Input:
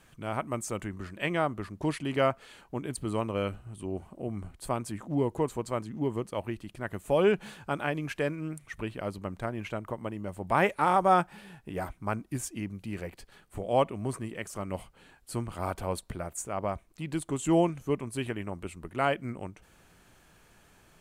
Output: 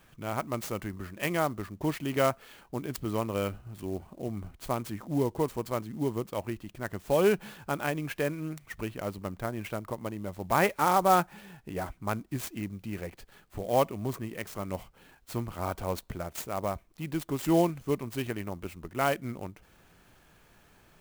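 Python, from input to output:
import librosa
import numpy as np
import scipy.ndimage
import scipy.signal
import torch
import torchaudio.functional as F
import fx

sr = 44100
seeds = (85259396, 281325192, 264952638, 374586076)

y = fx.clock_jitter(x, sr, seeds[0], jitter_ms=0.029)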